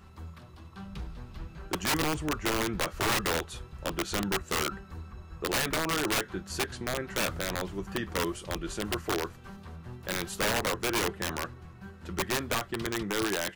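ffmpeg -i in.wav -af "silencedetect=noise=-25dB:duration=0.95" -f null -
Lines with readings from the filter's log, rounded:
silence_start: 0.00
silence_end: 1.73 | silence_duration: 1.73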